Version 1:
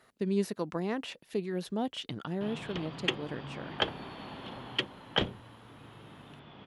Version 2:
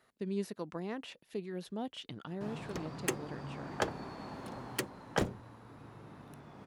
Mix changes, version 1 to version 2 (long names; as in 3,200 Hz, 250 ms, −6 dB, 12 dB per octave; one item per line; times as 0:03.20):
speech −6.5 dB
background: remove low-pass with resonance 3,200 Hz, resonance Q 6.4